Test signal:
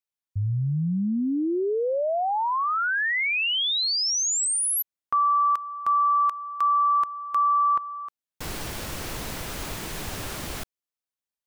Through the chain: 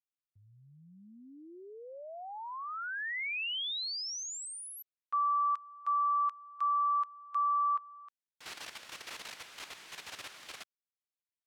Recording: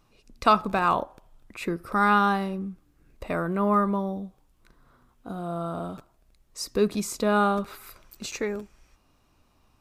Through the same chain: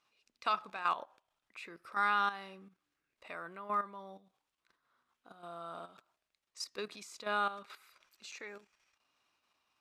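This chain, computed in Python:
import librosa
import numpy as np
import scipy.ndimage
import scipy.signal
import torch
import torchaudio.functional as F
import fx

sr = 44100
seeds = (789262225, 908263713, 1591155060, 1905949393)

y = fx.level_steps(x, sr, step_db=11)
y = fx.bandpass_q(y, sr, hz=2800.0, q=0.67)
y = y * 10.0 ** (-2.5 / 20.0)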